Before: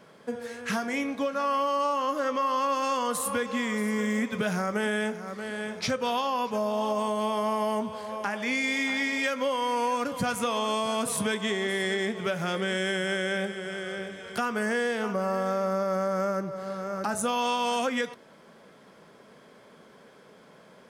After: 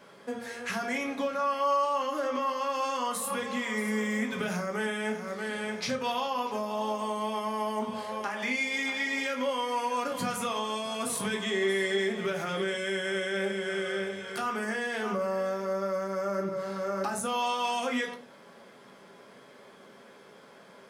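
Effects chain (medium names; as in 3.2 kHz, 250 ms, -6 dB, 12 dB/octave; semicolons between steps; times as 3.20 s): bass shelf 200 Hz -10.5 dB; peak limiter -24.5 dBFS, peak gain reduction 7 dB; reverberation RT60 0.30 s, pre-delay 3 ms, DRR 1.5 dB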